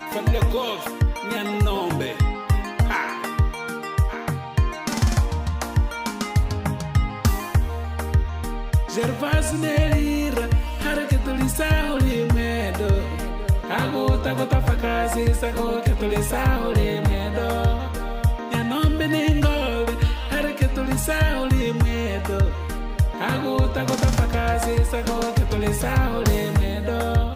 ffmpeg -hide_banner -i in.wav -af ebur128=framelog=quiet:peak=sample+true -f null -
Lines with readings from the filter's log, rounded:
Integrated loudness:
  I:         -22.8 LUFS
  Threshold: -32.8 LUFS
Loudness range:
  LRA:         2.3 LU
  Threshold: -42.8 LUFS
  LRA low:   -24.1 LUFS
  LRA high:  -21.9 LUFS
Sample peak:
  Peak:       -9.0 dBFS
True peak:
  Peak:       -8.8 dBFS